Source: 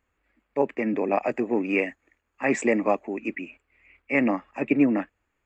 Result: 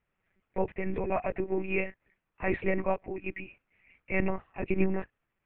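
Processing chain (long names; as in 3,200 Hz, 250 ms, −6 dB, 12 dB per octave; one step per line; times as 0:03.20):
one-pitch LPC vocoder at 8 kHz 190 Hz
level −5.5 dB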